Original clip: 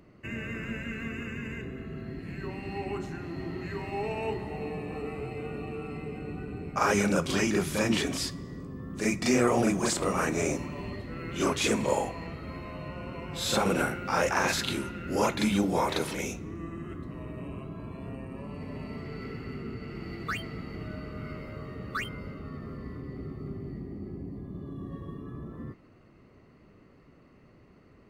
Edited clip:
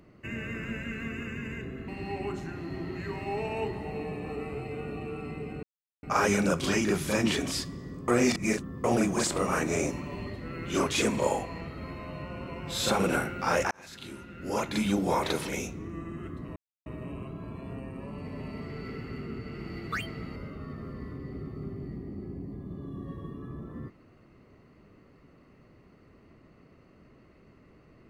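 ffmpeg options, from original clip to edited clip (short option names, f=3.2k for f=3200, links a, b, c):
-filter_complex "[0:a]asplit=9[a][b][c][d][e][f][g][h][i];[a]atrim=end=1.882[j];[b]atrim=start=2.538:end=6.29,asetpts=PTS-STARTPTS,afade=t=out:st=3.748:d=0.004:c=hsin[k];[c]atrim=start=6.29:end=6.69,asetpts=PTS-STARTPTS,volume=0[l];[d]atrim=start=6.69:end=8.742,asetpts=PTS-STARTPTS,afade=t=in:d=0.004:c=hsin[m];[e]atrim=start=8.738:end=9.502,asetpts=PTS-STARTPTS,areverse[n];[f]atrim=start=9.498:end=14.37,asetpts=PTS-STARTPTS,afade=t=out:st=4.868:d=0.004:c=hsin[o];[g]atrim=start=14.37:end=17.22,asetpts=PTS-STARTPTS,afade=t=in:d=1.38,afade=t=out:st=2.846:d=0.004:c=hsin,apad=pad_dur=0.3[p];[h]atrim=start=17.22:end=20.722,asetpts=PTS-STARTPTS,afade=t=in:d=0.004:c=hsin[q];[i]atrim=start=22.198[r];[k][l][m]concat=n=3:v=0:a=1[s];[j][s]acrossfade=d=0.004:c1=hsin:c2=hsin[t];[t][n]acrossfade=d=0.004:c1=hsin:c2=hsin[u];[o][p][q]concat=n=3:v=0:a=1[v];[u][v]acrossfade=d=0.004:c1=hsin:c2=hsin[w];[w][r]acrossfade=d=0.004:c1=hsin:c2=hsin"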